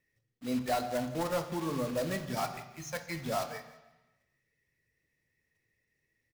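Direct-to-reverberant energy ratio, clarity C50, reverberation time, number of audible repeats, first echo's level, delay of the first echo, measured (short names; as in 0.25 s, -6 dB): 6.5 dB, 10.5 dB, 1.0 s, 2, -17.0 dB, 0.168 s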